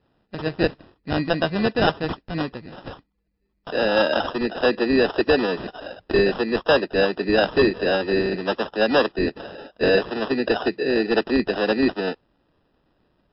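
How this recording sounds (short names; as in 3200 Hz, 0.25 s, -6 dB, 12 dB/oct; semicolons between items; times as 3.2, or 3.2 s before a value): aliases and images of a low sample rate 2200 Hz, jitter 0%; MP3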